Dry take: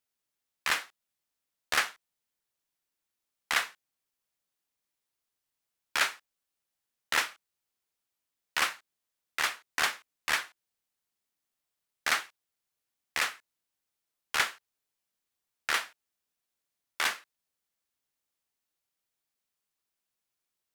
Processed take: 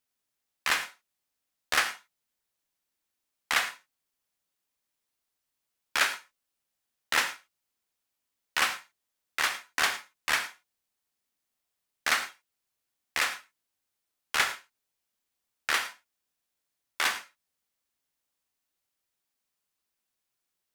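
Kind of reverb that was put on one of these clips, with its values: non-linear reverb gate 0.13 s flat, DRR 8.5 dB; gain +1.5 dB

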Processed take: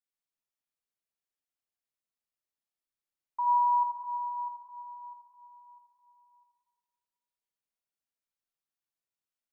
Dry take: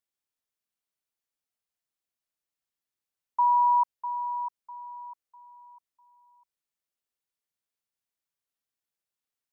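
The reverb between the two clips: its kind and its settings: digital reverb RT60 1.9 s, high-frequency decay 0.55×, pre-delay 5 ms, DRR 0 dB; gain -8 dB

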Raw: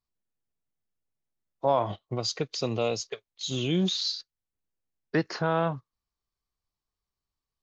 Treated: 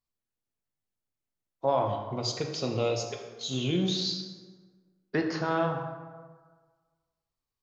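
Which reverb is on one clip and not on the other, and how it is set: plate-style reverb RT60 1.5 s, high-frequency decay 0.55×, DRR 2.5 dB; gain -3 dB

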